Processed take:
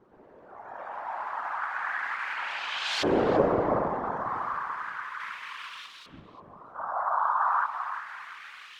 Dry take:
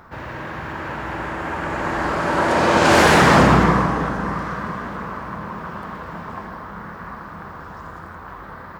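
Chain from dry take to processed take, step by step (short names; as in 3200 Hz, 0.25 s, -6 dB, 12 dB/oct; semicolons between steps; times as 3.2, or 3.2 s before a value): zero-crossing step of -28.5 dBFS; 5.2–5.86 sample leveller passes 1; LFO band-pass saw up 0.33 Hz 350–3900 Hz; spectral noise reduction 13 dB; 6.75–7.66 band shelf 1000 Hz +13 dB; on a send: darkening echo 0.338 s, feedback 30%, low-pass 970 Hz, level -6 dB; on the sum: whisperiser; 2.33–2.87 high shelf 8900 Hz -8 dB; gain -4 dB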